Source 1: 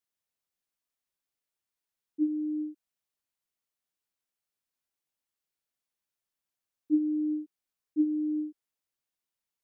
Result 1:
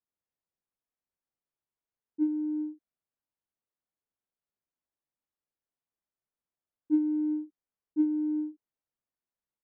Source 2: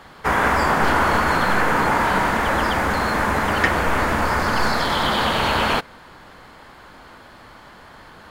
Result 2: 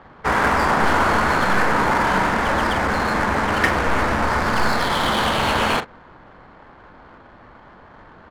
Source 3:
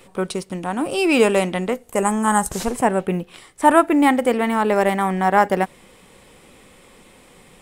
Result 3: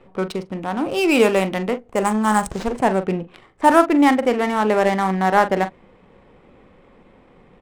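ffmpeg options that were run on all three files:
-filter_complex "[0:a]asplit=2[a][b];[b]adelay=42,volume=-11dB[c];[a][c]amix=inputs=2:normalize=0,adynamicsmooth=sensitivity=4:basefreq=1.5k"

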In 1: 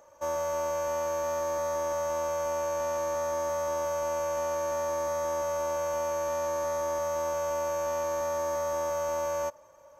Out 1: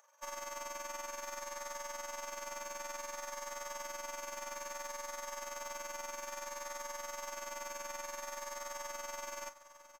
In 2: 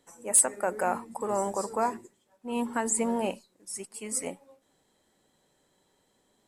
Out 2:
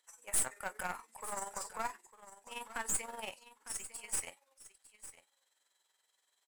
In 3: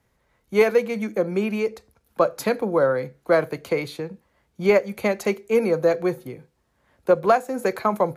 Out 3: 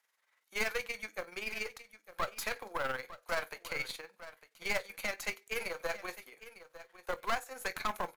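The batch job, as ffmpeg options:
-filter_complex "[0:a]highpass=1.3k,tremolo=f=21:d=0.621,aeval=exprs='(tanh(35.5*val(0)+0.7)-tanh(0.7))/35.5':c=same,acrusher=bits=6:mode=log:mix=0:aa=0.000001,asplit=2[a][b];[b]adelay=23,volume=-14dB[c];[a][c]amix=inputs=2:normalize=0,asplit=2[d][e];[e]aecho=0:1:903:0.178[f];[d][f]amix=inputs=2:normalize=0,volume=3dB"

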